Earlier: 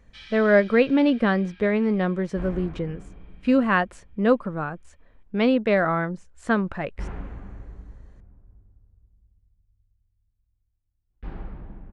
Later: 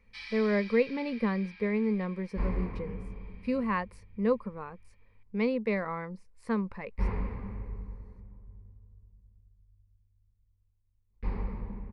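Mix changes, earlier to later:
speech -11.5 dB; master: add ripple EQ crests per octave 0.89, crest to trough 12 dB

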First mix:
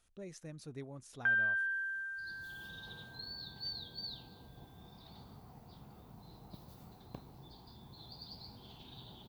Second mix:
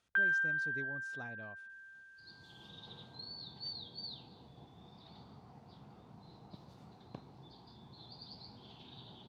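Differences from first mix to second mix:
first sound: entry -1.10 s; master: add BPF 100–5400 Hz

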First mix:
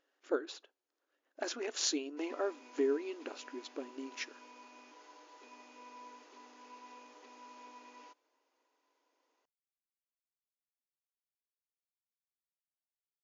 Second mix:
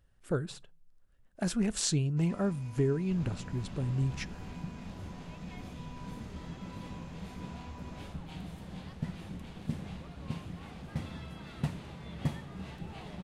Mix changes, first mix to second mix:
second sound: unmuted; master: remove brick-wall FIR band-pass 260–7200 Hz

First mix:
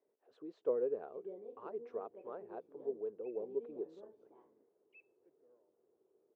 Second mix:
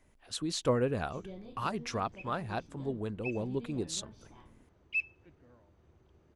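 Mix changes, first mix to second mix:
first sound -6.5 dB; master: remove ladder band-pass 470 Hz, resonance 70%

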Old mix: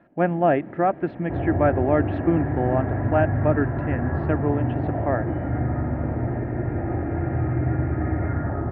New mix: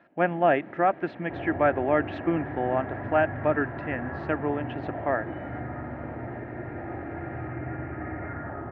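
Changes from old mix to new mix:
second sound -4.0 dB; master: add tilt +3 dB/oct

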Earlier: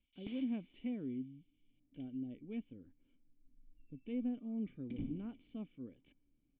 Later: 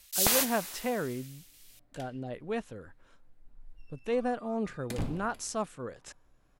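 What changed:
first sound +7.0 dB; master: remove vocal tract filter i

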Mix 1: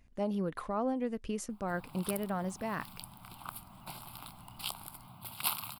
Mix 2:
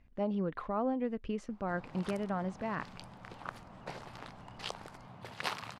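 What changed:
background: remove fixed phaser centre 1800 Hz, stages 6; master: add LPF 3100 Hz 12 dB/oct

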